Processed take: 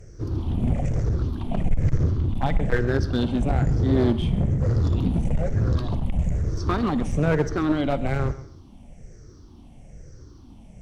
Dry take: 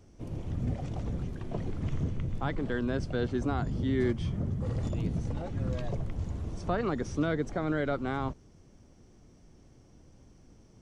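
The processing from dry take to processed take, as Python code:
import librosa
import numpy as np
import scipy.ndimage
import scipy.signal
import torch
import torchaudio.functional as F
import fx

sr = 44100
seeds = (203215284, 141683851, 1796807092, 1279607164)

y = fx.spec_ripple(x, sr, per_octave=0.53, drift_hz=-1.1, depth_db=15)
y = fx.low_shelf(y, sr, hz=110.0, db=9.0)
y = fx.echo_feedback(y, sr, ms=134, feedback_pct=23, wet_db=-17.0)
y = fx.clip_asym(y, sr, top_db=-26.5, bottom_db=-12.5)
y = fx.rev_schroeder(y, sr, rt60_s=0.46, comb_ms=38, drr_db=16.5)
y = y * librosa.db_to_amplitude(5.0)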